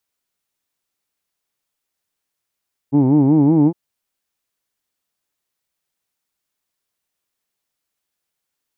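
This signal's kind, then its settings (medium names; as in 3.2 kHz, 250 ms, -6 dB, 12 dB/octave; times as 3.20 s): formant-synthesis vowel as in who'd, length 0.81 s, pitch 134 Hz, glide +3 st, vibrato depth 1.4 st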